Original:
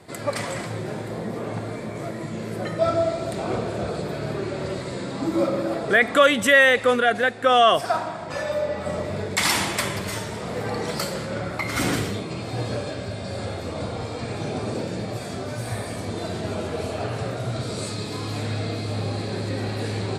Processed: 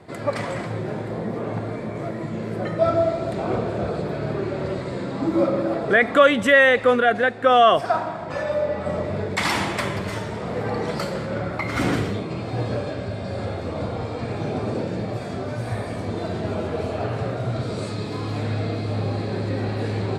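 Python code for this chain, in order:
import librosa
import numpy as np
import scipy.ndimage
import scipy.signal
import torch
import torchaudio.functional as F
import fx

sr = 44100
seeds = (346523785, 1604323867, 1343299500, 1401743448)

y = fx.lowpass(x, sr, hz=2000.0, slope=6)
y = F.gain(torch.from_numpy(y), 2.5).numpy()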